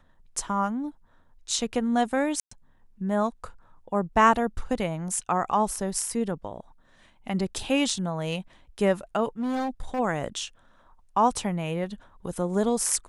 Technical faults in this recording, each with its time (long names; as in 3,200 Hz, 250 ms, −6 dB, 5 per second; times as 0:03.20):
0:02.40–0:02.51: drop-out 114 ms
0:09.40–0:10.00: clipping −25 dBFS